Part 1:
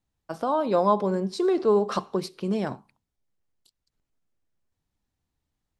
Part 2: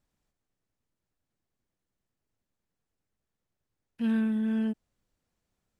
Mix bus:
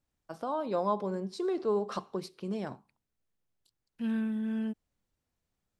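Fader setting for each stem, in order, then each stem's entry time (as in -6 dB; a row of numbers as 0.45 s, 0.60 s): -8.5 dB, -4.5 dB; 0.00 s, 0.00 s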